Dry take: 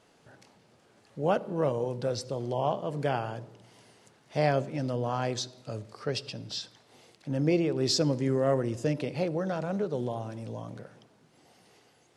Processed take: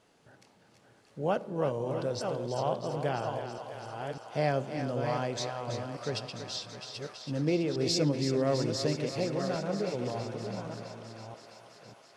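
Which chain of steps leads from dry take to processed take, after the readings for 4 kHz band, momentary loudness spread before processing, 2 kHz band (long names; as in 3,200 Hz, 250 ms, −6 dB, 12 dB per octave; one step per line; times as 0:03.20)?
−0.5 dB, 14 LU, −1.0 dB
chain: delay that plays each chunk backwards 597 ms, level −6 dB
on a send: feedback echo with a high-pass in the loop 329 ms, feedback 79%, high-pass 410 Hz, level −8.5 dB
on the sum: level −3 dB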